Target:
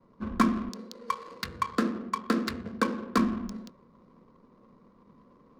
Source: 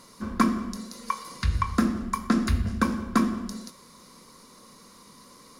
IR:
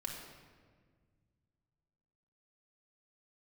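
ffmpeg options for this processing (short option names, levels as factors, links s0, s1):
-filter_complex "[0:a]asettb=1/sr,asplit=3[s0][s1][s2];[s0]atrim=end=0.694[s3];[s1]atrim=start=0.69:end=3.18,asetpts=PTS-STARTPTS,afade=t=in:d=0.004:c=qsin,afade=t=out:st=2.486:d=0.004:c=qsin,highpass=250,equalizer=f=470:t=q:w=4:g=9,equalizer=f=750:t=q:w=4:g=-4,equalizer=f=4400:t=q:w=4:g=7,lowpass=f=8300:w=0.5412,lowpass=f=8300:w=1.3066[s4];[s2]atrim=start=3.176[s5];[s3][s4]acrossfade=d=0.004:c1=hsin:c2=qsin[s6];[s6][s5]acrossfade=d=0.004:c1=qsin:c2=hsin,adynamicsmooth=sensitivity=6:basefreq=680,agate=range=0.0224:threshold=0.002:ratio=3:detection=peak,volume=0.841"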